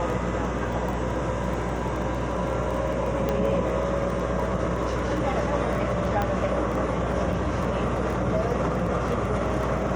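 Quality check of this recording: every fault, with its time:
buzz 60 Hz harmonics 11 -31 dBFS
crackle 12/s -30 dBFS
3.29 pop -13 dBFS
6.22 pop -13 dBFS

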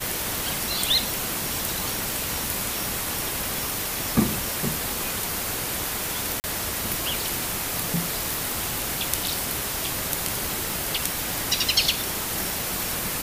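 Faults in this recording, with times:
crackle 15/s -31 dBFS
2.12 pop
6.4–6.44 gap 39 ms
8.34 pop
10.7 pop

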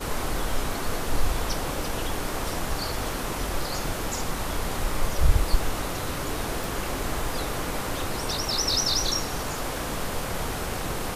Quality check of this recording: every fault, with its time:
6.64 pop

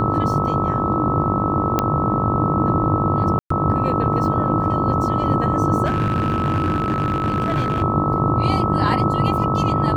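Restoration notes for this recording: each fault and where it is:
buzz 50 Hz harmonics 24 -25 dBFS
tone 1300 Hz -22 dBFS
1.79 pop -4 dBFS
3.39–3.5 gap 0.114 s
5.85–7.83 clipped -15 dBFS

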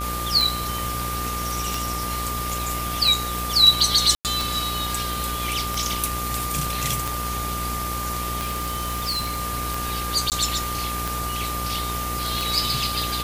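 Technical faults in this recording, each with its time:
buzz 60 Hz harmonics 40 -31 dBFS
tick 45 rpm
tone 1200 Hz -29 dBFS
4.15–4.25 gap 98 ms
8.37–9.42 clipped -21.5 dBFS
10.3–10.32 gap 18 ms

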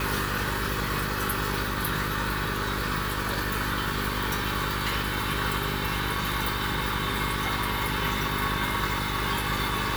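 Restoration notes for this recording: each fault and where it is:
hum 50 Hz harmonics 8 -33 dBFS

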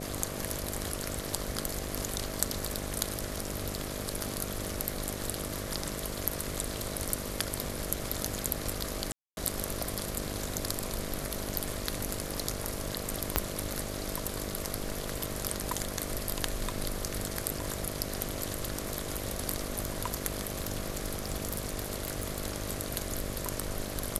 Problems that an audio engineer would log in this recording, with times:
buzz 50 Hz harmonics 13 -40 dBFS
9.12–9.37 gap 0.251 s
13.36 pop -7 dBFS
20.54–22.43 clipped -25 dBFS

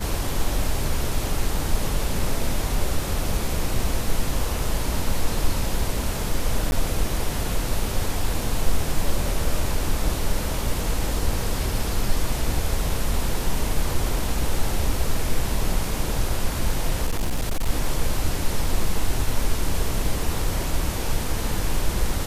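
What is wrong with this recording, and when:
6.71–6.72 gap 11 ms
17.07–17.7 clipped -18.5 dBFS

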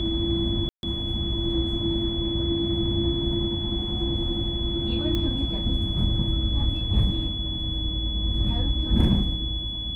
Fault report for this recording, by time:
tone 3400 Hz -30 dBFS
0.69–0.83 gap 0.141 s
5.15 pop -15 dBFS

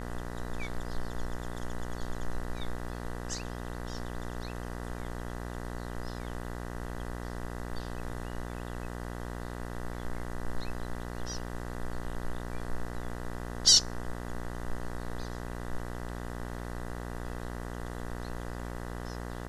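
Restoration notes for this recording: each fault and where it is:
buzz 60 Hz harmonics 33 -39 dBFS

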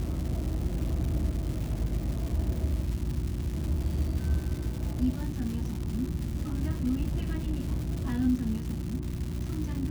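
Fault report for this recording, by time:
crackle 420/s -35 dBFS
hum 60 Hz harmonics 6 -35 dBFS

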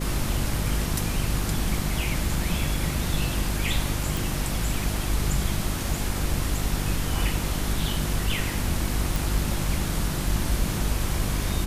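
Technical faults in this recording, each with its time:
hum 50 Hz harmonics 7 -30 dBFS
4.17 pop
9.16 pop

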